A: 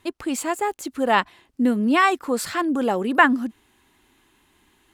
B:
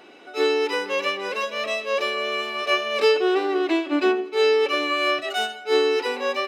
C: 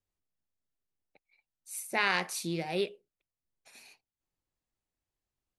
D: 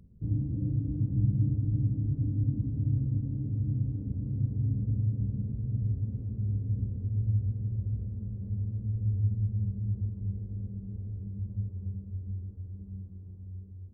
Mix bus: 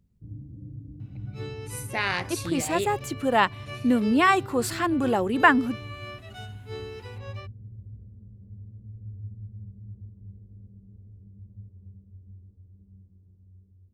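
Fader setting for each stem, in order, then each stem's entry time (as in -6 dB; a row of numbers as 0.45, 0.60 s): -2.0, -19.0, +1.0, -11.0 dB; 2.25, 1.00, 0.00, 0.00 s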